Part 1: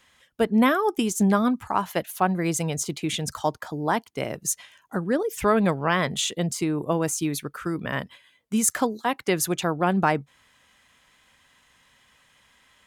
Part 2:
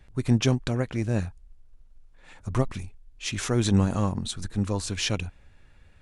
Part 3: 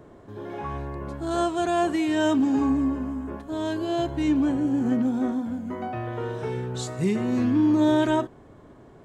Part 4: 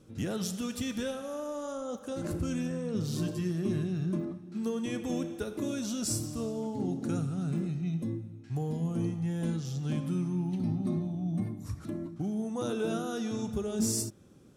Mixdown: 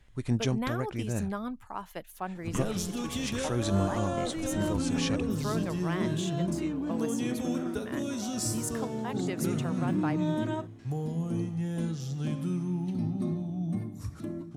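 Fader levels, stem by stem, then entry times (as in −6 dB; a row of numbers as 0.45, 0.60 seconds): −14.0, −6.5, −11.5, 0.0 decibels; 0.00, 0.00, 2.40, 2.35 seconds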